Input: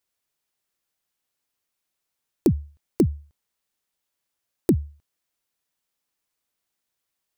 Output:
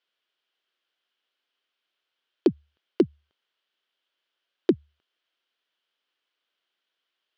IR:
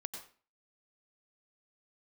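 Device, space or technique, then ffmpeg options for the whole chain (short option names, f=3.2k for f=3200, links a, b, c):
phone earpiece: -af "highpass=360,equalizer=f=370:t=q:w=4:g=3,equalizer=f=840:t=q:w=4:g=-4,equalizer=f=1.5k:t=q:w=4:g=5,equalizer=f=3.1k:t=q:w=4:g=10,lowpass=f=4.4k:w=0.5412,lowpass=f=4.4k:w=1.3066,volume=2dB"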